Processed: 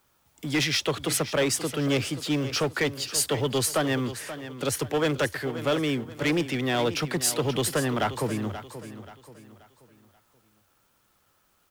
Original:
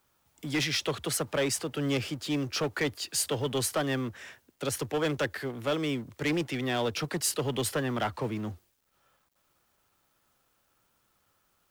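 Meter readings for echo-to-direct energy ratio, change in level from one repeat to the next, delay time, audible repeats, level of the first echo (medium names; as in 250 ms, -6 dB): -12.0 dB, -8.5 dB, 531 ms, 3, -12.5 dB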